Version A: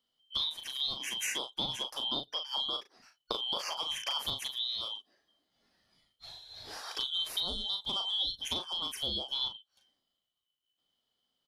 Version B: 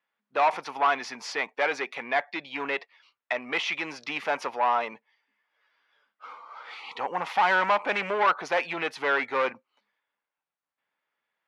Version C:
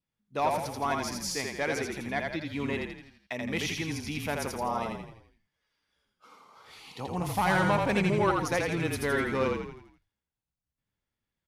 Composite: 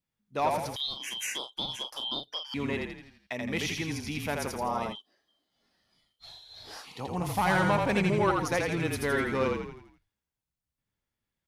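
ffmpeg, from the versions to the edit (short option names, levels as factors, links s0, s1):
-filter_complex "[0:a]asplit=2[s0][s1];[2:a]asplit=3[s2][s3][s4];[s2]atrim=end=0.762[s5];[s0]atrim=start=0.758:end=2.542[s6];[s3]atrim=start=2.538:end=4.96[s7];[s1]atrim=start=4.9:end=6.87[s8];[s4]atrim=start=6.81[s9];[s5][s6]acrossfade=d=0.004:c1=hsin:c2=hsin[s10];[s10][s7]acrossfade=d=0.004:c1=hsin:c2=hsin[s11];[s11][s8]acrossfade=d=0.06:c1=tri:c2=tri[s12];[s12][s9]acrossfade=d=0.06:c1=tri:c2=tri"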